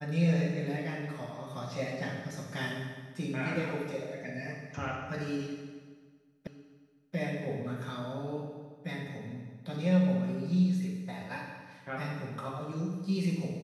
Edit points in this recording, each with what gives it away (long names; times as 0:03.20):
0:06.47: the same again, the last 0.68 s